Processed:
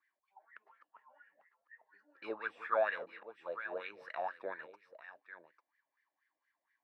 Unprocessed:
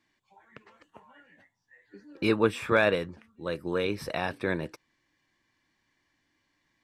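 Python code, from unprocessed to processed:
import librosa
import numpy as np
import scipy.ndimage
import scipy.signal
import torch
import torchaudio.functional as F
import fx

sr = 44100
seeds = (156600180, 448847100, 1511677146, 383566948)

y = fx.reverse_delay(x, sr, ms=173, wet_db=-14.0, at=(2.02, 4.11))
y = scipy.signal.sosfilt(scipy.signal.butter(2, 100.0, 'highpass', fs=sr, output='sos'), y)
y = fx.low_shelf(y, sr, hz=200.0, db=-8.0)
y = y + 10.0 ** (-13.5 / 20.0) * np.pad(y, (int(847 * sr / 1000.0), 0))[:len(y)]
y = fx.wah_lfo(y, sr, hz=4.2, low_hz=610.0, high_hz=1900.0, q=6.5)
y = fx.peak_eq(y, sr, hz=4400.0, db=2.5, octaves=0.77)
y = F.gain(torch.from_numpy(y), 2.0).numpy()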